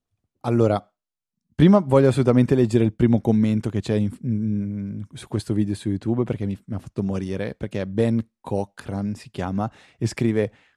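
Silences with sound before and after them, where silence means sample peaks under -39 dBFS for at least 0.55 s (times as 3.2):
0.81–1.59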